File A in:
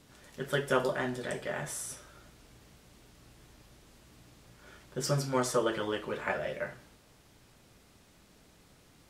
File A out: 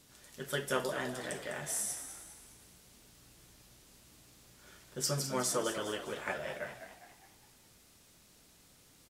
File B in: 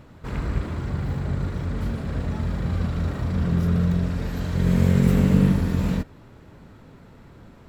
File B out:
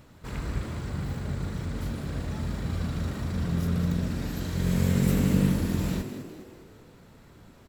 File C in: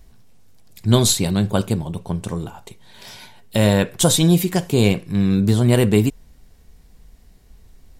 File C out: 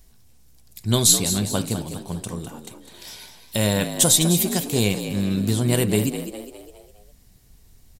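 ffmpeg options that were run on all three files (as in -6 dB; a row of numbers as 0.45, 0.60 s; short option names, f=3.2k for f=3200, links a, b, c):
-filter_complex "[0:a]highshelf=f=3.8k:g=11.5,asplit=2[a][b];[b]asplit=5[c][d][e][f][g];[c]adelay=204,afreqshift=61,volume=-10dB[h];[d]adelay=408,afreqshift=122,volume=-16.6dB[i];[e]adelay=612,afreqshift=183,volume=-23.1dB[j];[f]adelay=816,afreqshift=244,volume=-29.7dB[k];[g]adelay=1020,afreqshift=305,volume=-36.2dB[l];[h][i][j][k][l]amix=inputs=5:normalize=0[m];[a][m]amix=inputs=2:normalize=0,volume=-6dB"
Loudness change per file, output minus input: -3.0, -5.5, -2.0 LU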